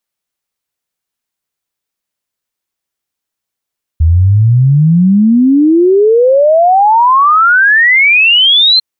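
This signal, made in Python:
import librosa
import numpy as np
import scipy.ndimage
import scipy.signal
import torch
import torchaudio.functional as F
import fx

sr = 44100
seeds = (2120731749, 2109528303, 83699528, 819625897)

y = fx.ess(sr, length_s=4.8, from_hz=77.0, to_hz=4200.0, level_db=-4.0)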